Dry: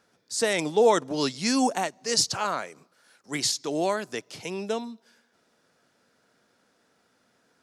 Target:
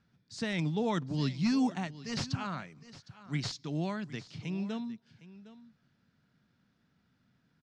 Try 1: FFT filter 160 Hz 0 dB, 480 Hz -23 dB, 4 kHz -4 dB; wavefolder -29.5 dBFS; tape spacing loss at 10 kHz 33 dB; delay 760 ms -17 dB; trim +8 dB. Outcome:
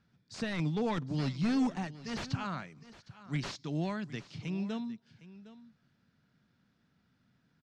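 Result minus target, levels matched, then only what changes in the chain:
wavefolder: distortion +9 dB
change: wavefolder -22.5 dBFS

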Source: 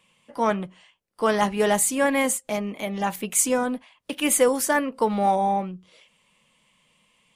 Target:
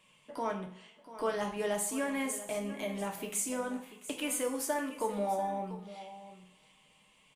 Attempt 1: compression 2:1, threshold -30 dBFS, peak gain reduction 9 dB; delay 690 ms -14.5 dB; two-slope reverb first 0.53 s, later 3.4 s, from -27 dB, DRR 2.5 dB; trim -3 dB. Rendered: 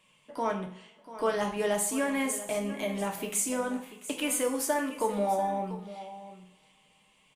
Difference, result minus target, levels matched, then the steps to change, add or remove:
compression: peak gain reduction -4.5 dB
change: compression 2:1, threshold -39 dBFS, peak gain reduction 13.5 dB

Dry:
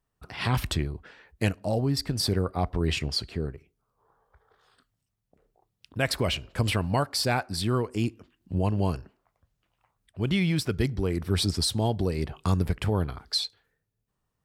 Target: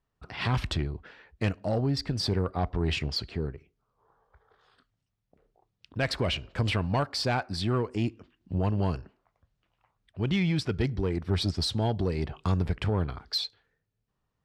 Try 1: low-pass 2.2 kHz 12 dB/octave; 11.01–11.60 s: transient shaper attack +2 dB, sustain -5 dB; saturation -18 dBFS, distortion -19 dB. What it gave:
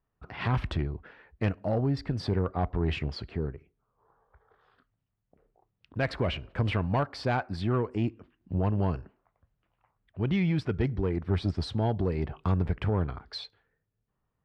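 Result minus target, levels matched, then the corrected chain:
4 kHz band -8.0 dB
low-pass 5.1 kHz 12 dB/octave; 11.01–11.60 s: transient shaper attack +2 dB, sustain -5 dB; saturation -18 dBFS, distortion -19 dB

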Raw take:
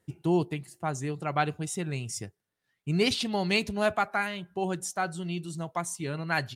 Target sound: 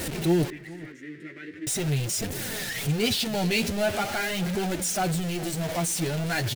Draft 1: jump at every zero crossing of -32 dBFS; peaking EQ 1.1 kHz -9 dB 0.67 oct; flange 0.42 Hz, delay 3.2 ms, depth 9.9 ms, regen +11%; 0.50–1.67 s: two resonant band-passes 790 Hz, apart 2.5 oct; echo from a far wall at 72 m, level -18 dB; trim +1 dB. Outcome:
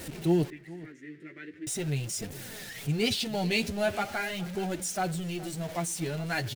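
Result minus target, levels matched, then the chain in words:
jump at every zero crossing: distortion -7 dB
jump at every zero crossing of -22 dBFS; peaking EQ 1.1 kHz -9 dB 0.67 oct; flange 0.42 Hz, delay 3.2 ms, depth 9.9 ms, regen +11%; 0.50–1.67 s: two resonant band-passes 790 Hz, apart 2.5 oct; echo from a far wall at 72 m, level -18 dB; trim +1 dB

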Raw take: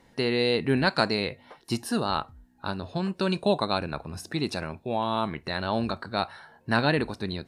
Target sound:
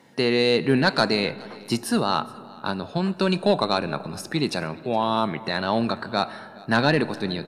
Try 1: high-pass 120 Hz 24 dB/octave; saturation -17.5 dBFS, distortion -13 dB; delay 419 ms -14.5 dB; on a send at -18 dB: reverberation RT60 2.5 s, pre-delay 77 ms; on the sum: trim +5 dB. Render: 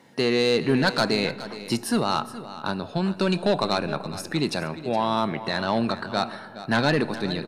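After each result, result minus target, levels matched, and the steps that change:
saturation: distortion +7 dB; echo-to-direct +4 dB
change: saturation -11.5 dBFS, distortion -20 dB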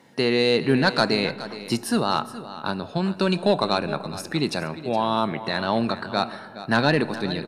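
echo-to-direct +4 dB
change: delay 419 ms -23.5 dB

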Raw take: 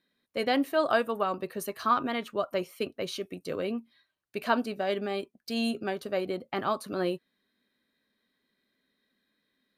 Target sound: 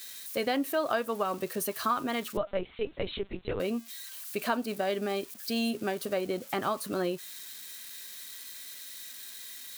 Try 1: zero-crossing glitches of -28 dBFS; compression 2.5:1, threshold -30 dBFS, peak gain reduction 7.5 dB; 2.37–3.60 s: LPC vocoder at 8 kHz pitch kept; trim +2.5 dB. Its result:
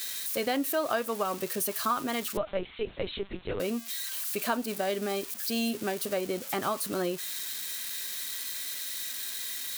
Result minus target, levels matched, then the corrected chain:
zero-crossing glitches: distortion +8 dB
zero-crossing glitches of -36.5 dBFS; compression 2.5:1, threshold -30 dBFS, peak gain reduction 7.5 dB; 2.37–3.60 s: LPC vocoder at 8 kHz pitch kept; trim +2.5 dB

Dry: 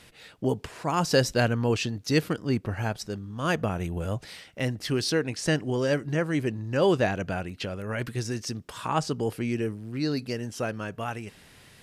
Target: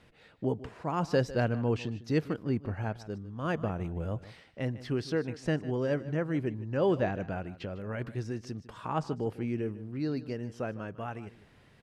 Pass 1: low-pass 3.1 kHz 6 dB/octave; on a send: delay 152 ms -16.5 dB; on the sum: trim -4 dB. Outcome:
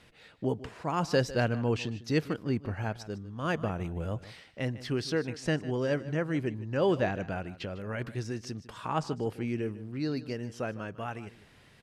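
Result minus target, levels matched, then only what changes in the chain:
4 kHz band +5.0 dB
change: low-pass 1.3 kHz 6 dB/octave

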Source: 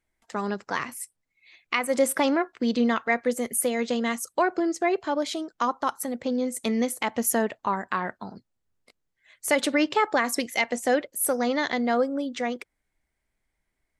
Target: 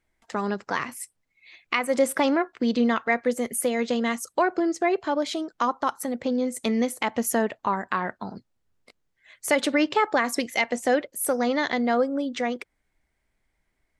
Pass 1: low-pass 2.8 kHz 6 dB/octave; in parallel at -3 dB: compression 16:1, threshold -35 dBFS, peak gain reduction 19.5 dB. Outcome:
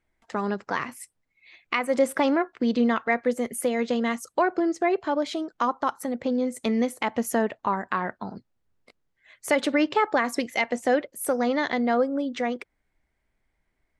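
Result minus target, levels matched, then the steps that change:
8 kHz band -4.5 dB
change: low-pass 6.4 kHz 6 dB/octave

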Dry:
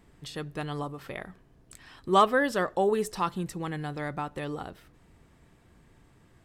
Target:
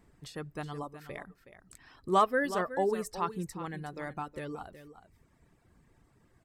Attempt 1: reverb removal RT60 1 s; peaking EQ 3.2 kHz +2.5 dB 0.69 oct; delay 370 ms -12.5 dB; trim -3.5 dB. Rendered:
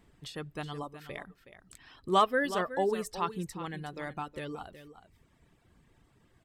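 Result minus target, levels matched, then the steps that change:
4 kHz band +6.0 dB
change: peaking EQ 3.2 kHz -5 dB 0.69 oct

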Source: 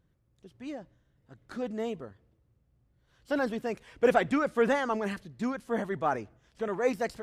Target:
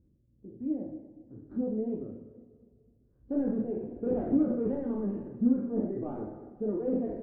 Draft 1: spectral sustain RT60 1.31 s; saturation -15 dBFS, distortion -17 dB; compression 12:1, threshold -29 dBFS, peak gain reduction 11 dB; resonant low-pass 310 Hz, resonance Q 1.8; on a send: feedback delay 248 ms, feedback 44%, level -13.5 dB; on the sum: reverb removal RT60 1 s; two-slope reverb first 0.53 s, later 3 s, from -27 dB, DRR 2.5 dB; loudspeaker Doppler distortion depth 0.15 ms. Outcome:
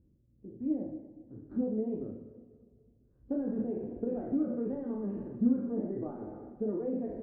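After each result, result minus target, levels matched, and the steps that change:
compression: peak gain reduction +11 dB; saturation: distortion -9 dB
remove: compression 12:1, threshold -29 dBFS, peak gain reduction 11 dB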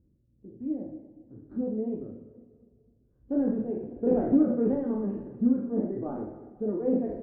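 saturation: distortion -9 dB
change: saturation -24 dBFS, distortion -8 dB

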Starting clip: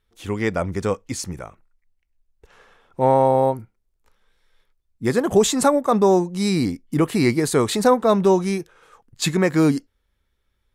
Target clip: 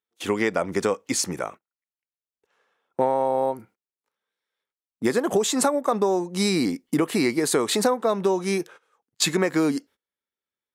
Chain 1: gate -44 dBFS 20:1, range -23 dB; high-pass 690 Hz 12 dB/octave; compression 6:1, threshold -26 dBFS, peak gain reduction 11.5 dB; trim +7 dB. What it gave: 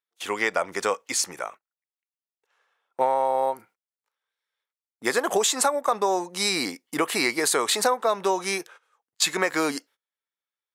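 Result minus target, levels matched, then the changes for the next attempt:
250 Hz band -7.5 dB
change: high-pass 260 Hz 12 dB/octave

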